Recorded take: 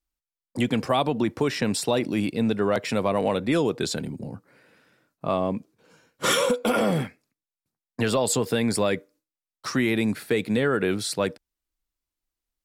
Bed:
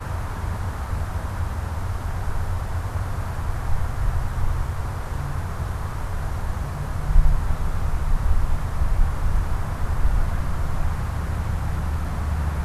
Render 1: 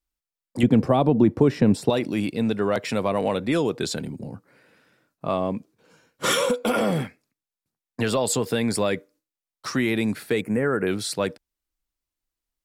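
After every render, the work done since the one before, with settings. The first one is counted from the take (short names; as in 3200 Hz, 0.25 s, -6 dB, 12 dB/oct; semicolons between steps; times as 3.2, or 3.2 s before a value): 0.63–1.9 tilt shelf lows +9 dB, about 910 Hz; 10.41–10.87 Butterworth band-stop 3800 Hz, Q 0.8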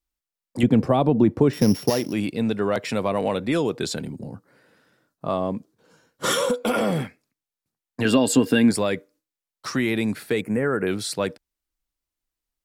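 1.53–2.13 sample sorter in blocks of 8 samples; 4.13–6.61 bell 2400 Hz -7.5 dB 0.39 oct; 8.05–8.71 small resonant body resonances 270/1600/2800 Hz, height 15 dB, ringing for 55 ms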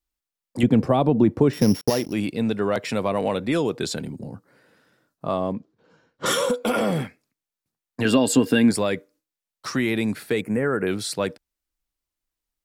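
1.81–2.25 gate -31 dBFS, range -44 dB; 5.52–6.26 air absorption 150 m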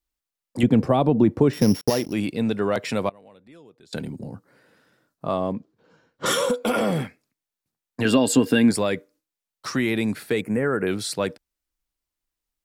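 3.09–3.93 flipped gate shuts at -25 dBFS, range -26 dB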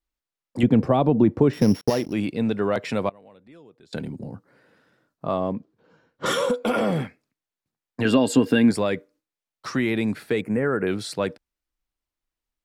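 high shelf 5500 Hz -9.5 dB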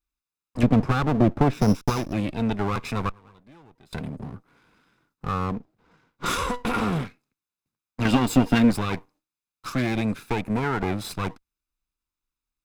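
minimum comb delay 0.8 ms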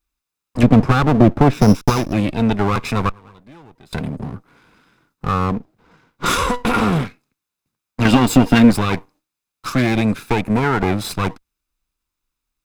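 gain +8 dB; limiter -1 dBFS, peak gain reduction 2 dB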